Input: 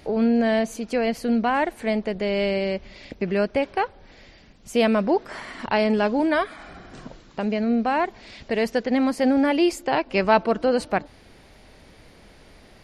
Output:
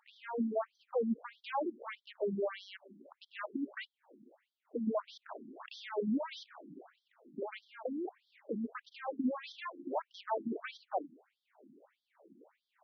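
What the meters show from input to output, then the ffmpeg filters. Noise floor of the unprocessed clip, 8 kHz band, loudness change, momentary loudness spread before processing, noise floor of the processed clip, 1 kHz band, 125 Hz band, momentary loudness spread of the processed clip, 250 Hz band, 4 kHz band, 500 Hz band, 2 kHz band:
-51 dBFS, under -25 dB, -16.5 dB, 12 LU, under -85 dBFS, -16.5 dB, -17.5 dB, 16 LU, -16.5 dB, -17.0 dB, -16.5 dB, -19.5 dB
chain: -af "volume=18.8,asoftclip=hard,volume=0.0531,adynamicsmooth=sensitivity=1.5:basefreq=780,afftfilt=real='re*between(b*sr/1024,240*pow(4500/240,0.5+0.5*sin(2*PI*1.6*pts/sr))/1.41,240*pow(4500/240,0.5+0.5*sin(2*PI*1.6*pts/sr))*1.41)':imag='im*between(b*sr/1024,240*pow(4500/240,0.5+0.5*sin(2*PI*1.6*pts/sr))/1.41,240*pow(4500/240,0.5+0.5*sin(2*PI*1.6*pts/sr))*1.41)':win_size=1024:overlap=0.75"

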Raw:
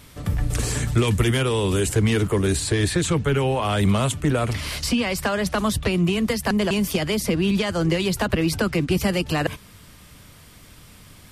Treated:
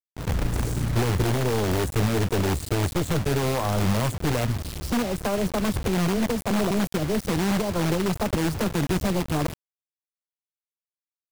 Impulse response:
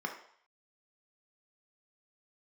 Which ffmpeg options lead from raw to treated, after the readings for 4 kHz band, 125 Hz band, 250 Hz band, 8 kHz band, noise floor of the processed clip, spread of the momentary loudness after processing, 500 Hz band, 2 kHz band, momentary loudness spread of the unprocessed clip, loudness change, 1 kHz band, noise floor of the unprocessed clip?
-6.0 dB, -2.5 dB, -3.0 dB, -5.0 dB, under -85 dBFS, 4 LU, -3.0 dB, -5.0 dB, 4 LU, -3.0 dB, -1.0 dB, -48 dBFS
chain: -filter_complex "[0:a]afwtdn=0.0631,equalizer=f=1800:w=1.1:g=-9.5,asplit=2[s0][s1];[s1]aeval=exprs='(mod(7.5*val(0)+1,2)-1)/7.5':c=same,volume=0.562[s2];[s0][s2]amix=inputs=2:normalize=0,aeval=exprs='0.422*(cos(1*acos(clip(val(0)/0.422,-1,1)))-cos(1*PI/2))+0.0596*(cos(4*acos(clip(val(0)/0.422,-1,1)))-cos(4*PI/2))':c=same,acrusher=bits=4:mix=0:aa=0.000001,volume=0.631"

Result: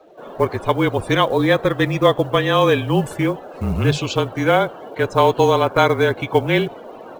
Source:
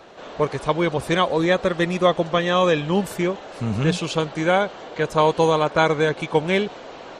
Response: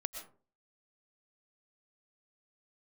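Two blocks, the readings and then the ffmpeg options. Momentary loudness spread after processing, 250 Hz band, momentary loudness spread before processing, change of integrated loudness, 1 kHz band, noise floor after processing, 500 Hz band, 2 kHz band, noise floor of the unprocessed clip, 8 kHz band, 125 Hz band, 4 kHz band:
8 LU, +2.5 dB, 8 LU, +3.0 dB, +3.0 dB, -38 dBFS, +3.0 dB, +2.5 dB, -39 dBFS, 0.0 dB, +5.0 dB, +2.5 dB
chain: -af "afftdn=nr=17:nf=-39,acrusher=bits=8:mode=log:mix=0:aa=0.000001,afreqshift=-30,volume=1.41"

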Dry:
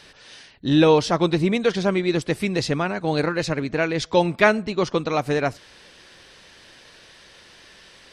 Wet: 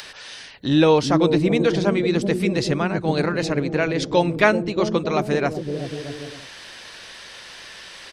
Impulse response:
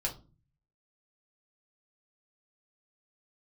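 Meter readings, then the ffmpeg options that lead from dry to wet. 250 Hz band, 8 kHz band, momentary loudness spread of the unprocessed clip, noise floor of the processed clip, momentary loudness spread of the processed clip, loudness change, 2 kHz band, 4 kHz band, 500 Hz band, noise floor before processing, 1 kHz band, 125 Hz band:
+2.0 dB, +0.5 dB, 7 LU, -41 dBFS, 20 LU, +1.0 dB, 0.0 dB, +0.5 dB, +1.0 dB, -50 dBFS, 0.0 dB, +2.0 dB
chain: -filter_complex "[0:a]acrossover=split=570[s0][s1];[s0]aecho=1:1:380|627|787.6|891.9|959.7:0.631|0.398|0.251|0.158|0.1[s2];[s1]acompressor=mode=upward:threshold=0.0316:ratio=2.5[s3];[s2][s3]amix=inputs=2:normalize=0"

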